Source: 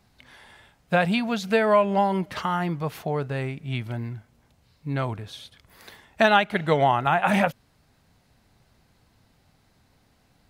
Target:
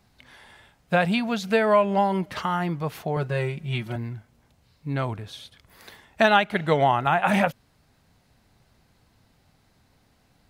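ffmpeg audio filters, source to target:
ffmpeg -i in.wav -filter_complex "[0:a]asettb=1/sr,asplit=3[link_01][link_02][link_03];[link_01]atrim=end=3.164[link_04];[link_02]atrim=start=3.16:end=3.96,asetpts=PTS-STARTPTS,afade=type=in:duration=0.004:curve=qsin,afade=type=out:start_time=0.796:duration=0.004:curve=qsin,aecho=1:1:5.5:0.94,atrim=end_sample=35280[link_05];[link_03]atrim=start=3.956[link_06];[link_04][link_05]acrossfade=duration=0.004:curve1=hsin:curve2=qsin[link_07];[link_07][link_06]acrossfade=duration=0.004:curve1=qsin:curve2=hsin" out.wav

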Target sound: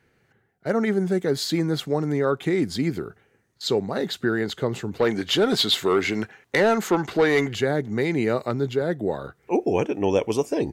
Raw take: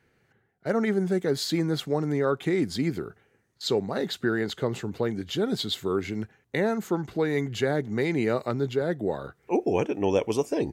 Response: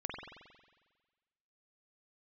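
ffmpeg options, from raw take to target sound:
-filter_complex "[0:a]asplit=3[link_01][link_02][link_03];[link_01]afade=type=out:start_time=4.99:duration=0.02[link_04];[link_02]asplit=2[link_05][link_06];[link_06]highpass=frequency=720:poles=1,volume=17dB,asoftclip=type=tanh:threshold=-11.5dB[link_07];[link_05][link_07]amix=inputs=2:normalize=0,lowpass=frequency=5700:poles=1,volume=-6dB,afade=type=in:start_time=4.99:duration=0.02,afade=type=out:start_time=7.54:duration=0.02[link_08];[link_03]afade=type=in:start_time=7.54:duration=0.02[link_09];[link_04][link_08][link_09]amix=inputs=3:normalize=0,volume=2.5dB"

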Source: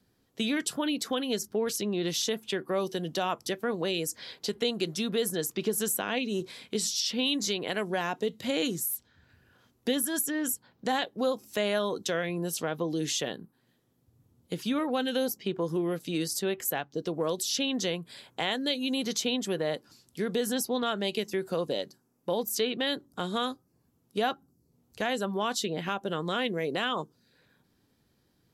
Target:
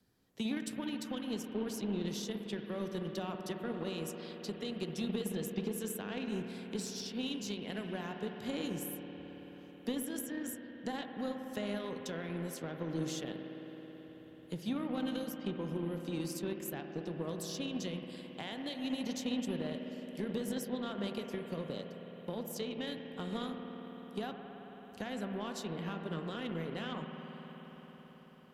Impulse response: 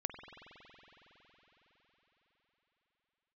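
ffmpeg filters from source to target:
-filter_complex "[0:a]acrossover=split=230[link_01][link_02];[link_02]acompressor=threshold=-59dB:ratio=1.5[link_03];[link_01][link_03]amix=inputs=2:normalize=0[link_04];[1:a]atrim=start_sample=2205,asetrate=37485,aresample=44100[link_05];[link_04][link_05]afir=irnorm=-1:irlink=0,aeval=exprs='0.0631*(cos(1*acos(clip(val(0)/0.0631,-1,1)))-cos(1*PI/2))+0.00631*(cos(3*acos(clip(val(0)/0.0631,-1,1)))-cos(3*PI/2))+0.000891*(cos(7*acos(clip(val(0)/0.0631,-1,1)))-cos(7*PI/2))':channel_layout=same,volume=1dB"

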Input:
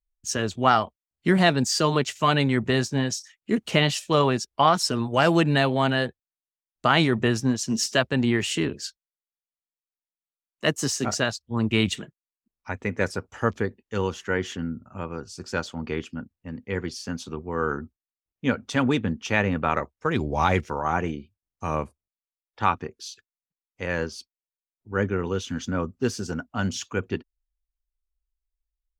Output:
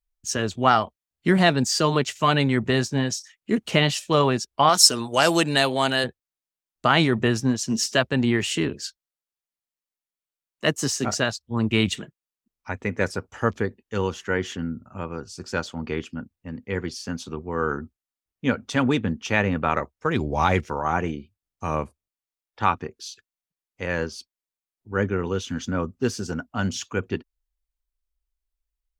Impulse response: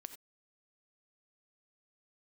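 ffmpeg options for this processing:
-filter_complex "[0:a]asettb=1/sr,asplit=3[link_01][link_02][link_03];[link_01]atrim=end=4.694[link_04];[link_02]atrim=start=4.69:end=6.04,asetpts=PTS-STARTPTS,afade=type=in:duration=0.004:curve=qsin,afade=type=out:start_time=1.346:duration=0.004:curve=qsin,bass=frequency=250:gain=-8,treble=frequency=4000:gain=14[link_05];[link_03]atrim=start=6.036[link_06];[link_04][link_05]acrossfade=duration=0.004:curve1=hsin:curve2=qsin[link_07];[link_07][link_06]acrossfade=duration=0.004:curve1=qsin:curve2=hsin,volume=1dB"

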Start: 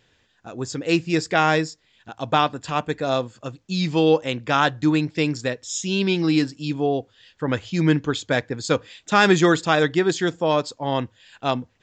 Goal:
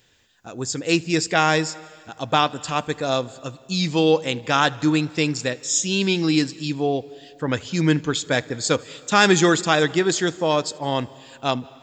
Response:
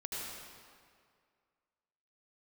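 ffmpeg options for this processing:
-filter_complex "[0:a]aemphasis=mode=production:type=50fm,asplit=2[link_01][link_02];[1:a]atrim=start_sample=2205,adelay=78[link_03];[link_02][link_03]afir=irnorm=-1:irlink=0,volume=-21.5dB[link_04];[link_01][link_04]amix=inputs=2:normalize=0"

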